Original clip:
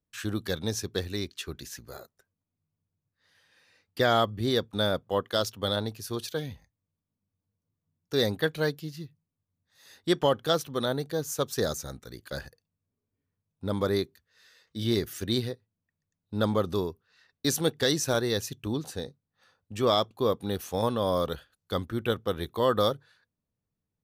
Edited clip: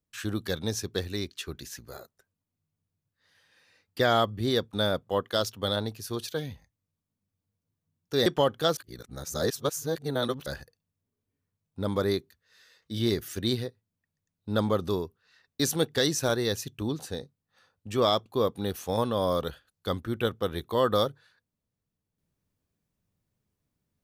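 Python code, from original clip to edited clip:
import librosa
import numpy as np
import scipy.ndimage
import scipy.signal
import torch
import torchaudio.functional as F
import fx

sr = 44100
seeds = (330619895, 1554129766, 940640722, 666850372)

y = fx.edit(x, sr, fx.cut(start_s=8.26, length_s=1.85),
    fx.reverse_span(start_s=10.62, length_s=1.69), tone=tone)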